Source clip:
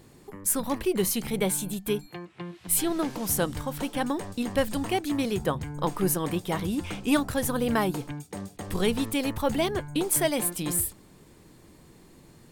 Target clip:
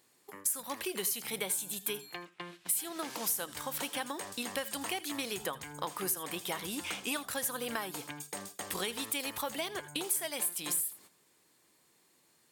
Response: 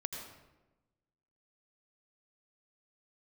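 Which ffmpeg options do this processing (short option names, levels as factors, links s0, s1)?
-filter_complex "[0:a]highpass=f=1300:p=1,agate=range=0.251:threshold=0.00224:ratio=16:detection=peak,acompressor=threshold=0.0141:ratio=6,asplit=2[s0][s1];[1:a]atrim=start_sample=2205,atrim=end_sample=3969,highshelf=f=5900:g=8.5[s2];[s1][s2]afir=irnorm=-1:irlink=0,volume=0.668[s3];[s0][s3]amix=inputs=2:normalize=0"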